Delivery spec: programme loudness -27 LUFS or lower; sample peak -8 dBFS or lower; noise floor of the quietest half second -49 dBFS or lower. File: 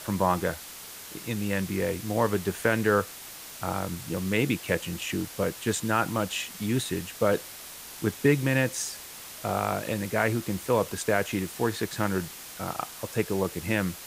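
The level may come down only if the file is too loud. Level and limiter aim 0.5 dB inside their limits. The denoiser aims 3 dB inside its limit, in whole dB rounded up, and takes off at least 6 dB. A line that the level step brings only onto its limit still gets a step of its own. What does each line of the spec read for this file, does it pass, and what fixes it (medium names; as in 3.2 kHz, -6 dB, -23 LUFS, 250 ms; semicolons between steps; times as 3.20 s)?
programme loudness -28.5 LUFS: pass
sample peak -9.0 dBFS: pass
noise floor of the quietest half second -43 dBFS: fail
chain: noise reduction 9 dB, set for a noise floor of -43 dBFS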